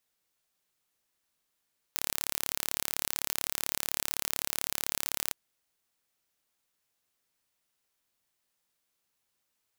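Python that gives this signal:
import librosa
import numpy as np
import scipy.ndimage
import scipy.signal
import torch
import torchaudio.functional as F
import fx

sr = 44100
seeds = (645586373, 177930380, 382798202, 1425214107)

y = 10.0 ** (-3.5 / 20.0) * (np.mod(np.arange(round(3.36 * sr)), round(sr / 35.8)) == 0)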